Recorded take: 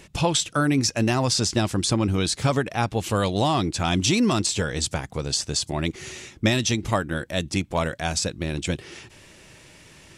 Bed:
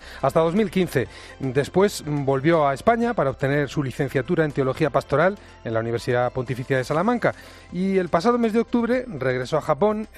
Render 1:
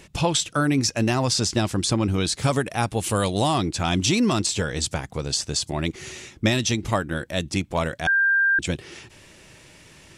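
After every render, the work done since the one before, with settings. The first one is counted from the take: 2.43–3.58 s: peaking EQ 9.6 kHz +11.5 dB 0.6 oct; 8.07–8.59 s: bleep 1.59 kHz -16 dBFS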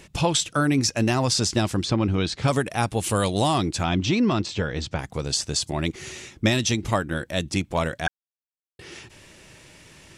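1.83–2.48 s: low-pass 4.2 kHz; 3.84–4.99 s: distance through air 170 m; 8.08–8.79 s: mute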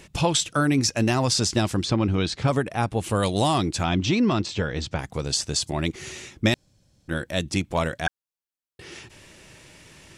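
2.43–3.23 s: treble shelf 3.1 kHz -9.5 dB; 6.54–7.08 s: room tone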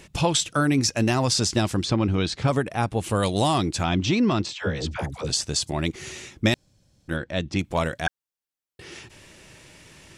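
4.53–5.30 s: phase dispersion lows, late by 91 ms, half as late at 590 Hz; 7.16–7.59 s: distance through air 130 m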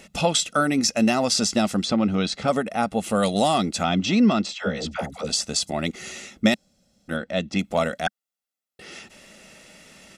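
resonant low shelf 160 Hz -9.5 dB, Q 3; comb 1.5 ms, depth 57%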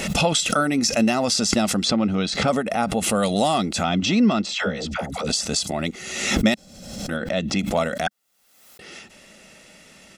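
swell ahead of each attack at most 50 dB/s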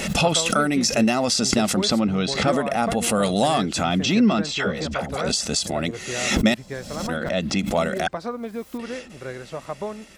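add bed -11 dB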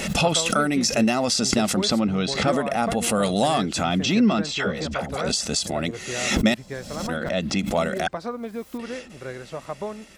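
trim -1 dB

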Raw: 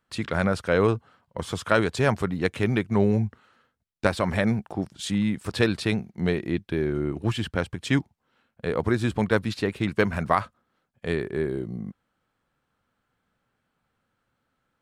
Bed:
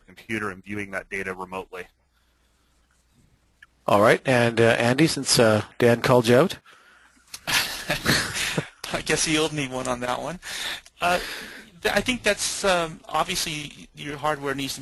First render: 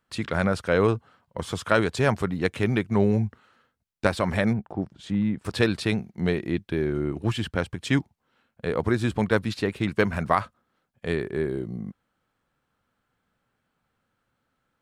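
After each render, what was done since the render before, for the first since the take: 4.53–5.45 s: low-pass 1.1 kHz 6 dB/octave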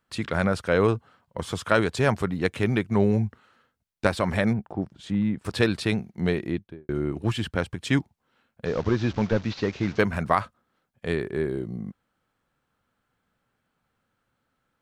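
6.41–6.89 s: studio fade out; 8.65–9.99 s: one-bit delta coder 32 kbps, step -38 dBFS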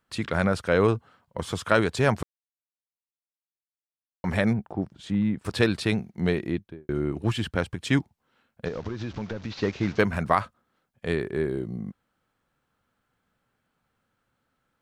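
2.23–4.24 s: mute; 8.68–9.61 s: compression 8:1, threshold -28 dBFS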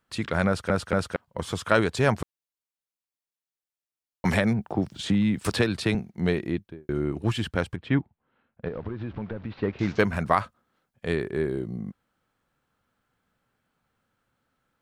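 0.47 s: stutter in place 0.23 s, 3 plays; 4.25–5.95 s: three bands compressed up and down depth 100%; 7.76–9.79 s: distance through air 450 m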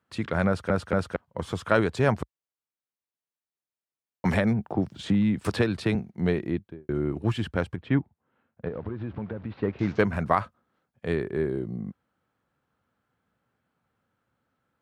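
high-pass 56 Hz 24 dB/octave; treble shelf 2.7 kHz -8.5 dB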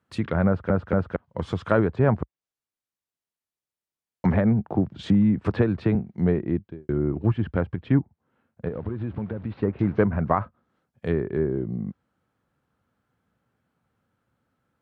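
low-pass that closes with the level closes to 1.5 kHz, closed at -23 dBFS; bass shelf 360 Hz +5 dB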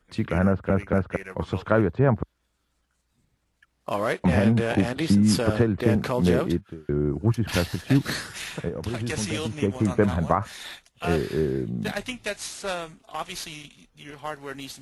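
add bed -9 dB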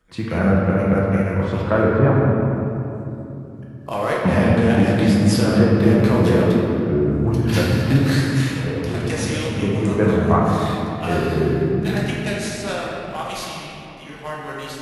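simulated room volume 140 m³, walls hard, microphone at 0.69 m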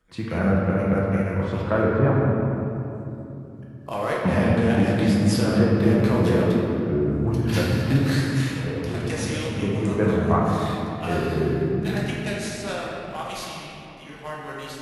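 trim -4 dB

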